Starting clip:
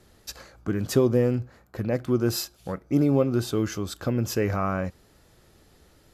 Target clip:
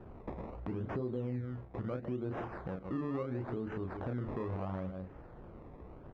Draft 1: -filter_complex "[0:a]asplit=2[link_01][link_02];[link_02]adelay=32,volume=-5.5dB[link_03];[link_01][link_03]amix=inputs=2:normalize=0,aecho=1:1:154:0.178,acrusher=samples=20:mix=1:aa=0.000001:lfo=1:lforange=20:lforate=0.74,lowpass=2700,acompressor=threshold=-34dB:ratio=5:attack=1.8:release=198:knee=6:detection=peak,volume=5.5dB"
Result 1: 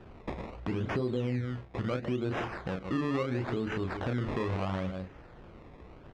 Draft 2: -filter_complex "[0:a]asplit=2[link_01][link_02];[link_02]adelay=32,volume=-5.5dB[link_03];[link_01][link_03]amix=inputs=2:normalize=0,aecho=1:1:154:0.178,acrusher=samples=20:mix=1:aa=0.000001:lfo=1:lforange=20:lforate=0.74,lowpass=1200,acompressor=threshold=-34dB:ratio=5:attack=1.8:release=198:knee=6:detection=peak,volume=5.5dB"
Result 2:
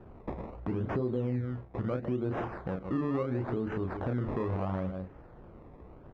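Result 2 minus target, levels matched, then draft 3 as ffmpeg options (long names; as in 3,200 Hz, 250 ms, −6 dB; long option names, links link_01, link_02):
downward compressor: peak gain reduction −5.5 dB
-filter_complex "[0:a]asplit=2[link_01][link_02];[link_02]adelay=32,volume=-5.5dB[link_03];[link_01][link_03]amix=inputs=2:normalize=0,aecho=1:1:154:0.178,acrusher=samples=20:mix=1:aa=0.000001:lfo=1:lforange=20:lforate=0.74,lowpass=1200,acompressor=threshold=-41dB:ratio=5:attack=1.8:release=198:knee=6:detection=peak,volume=5.5dB"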